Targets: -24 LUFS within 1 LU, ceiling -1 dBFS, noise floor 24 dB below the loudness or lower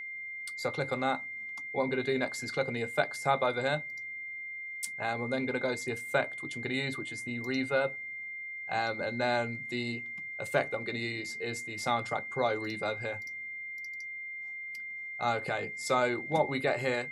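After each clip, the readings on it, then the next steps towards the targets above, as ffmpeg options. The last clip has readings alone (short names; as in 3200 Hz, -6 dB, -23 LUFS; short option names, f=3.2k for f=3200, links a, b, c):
steady tone 2100 Hz; tone level -38 dBFS; loudness -33.0 LUFS; peak -11.5 dBFS; loudness target -24.0 LUFS
-> -af "bandreject=f=2.1k:w=30"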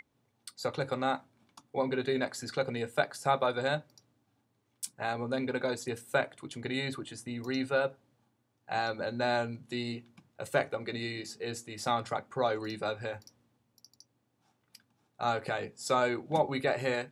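steady tone none; loudness -33.0 LUFS; peak -11.5 dBFS; loudness target -24.0 LUFS
-> -af "volume=9dB"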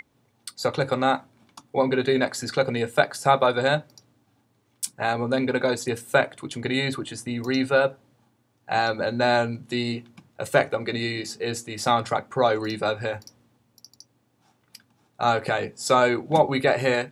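loudness -24.0 LUFS; peak -2.5 dBFS; noise floor -67 dBFS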